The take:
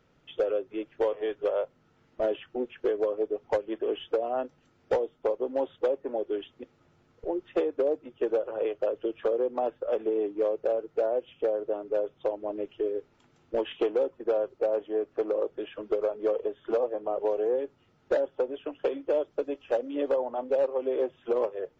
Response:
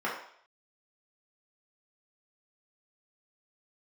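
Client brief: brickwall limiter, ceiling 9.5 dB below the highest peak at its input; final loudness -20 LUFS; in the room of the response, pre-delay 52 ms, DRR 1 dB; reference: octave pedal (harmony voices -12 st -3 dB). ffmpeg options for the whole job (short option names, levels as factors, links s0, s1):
-filter_complex "[0:a]alimiter=level_in=1.58:limit=0.0631:level=0:latency=1,volume=0.631,asplit=2[s0][s1];[1:a]atrim=start_sample=2205,adelay=52[s2];[s1][s2]afir=irnorm=-1:irlink=0,volume=0.299[s3];[s0][s3]amix=inputs=2:normalize=0,asplit=2[s4][s5];[s5]asetrate=22050,aresample=44100,atempo=2,volume=0.708[s6];[s4][s6]amix=inputs=2:normalize=0,volume=4.73"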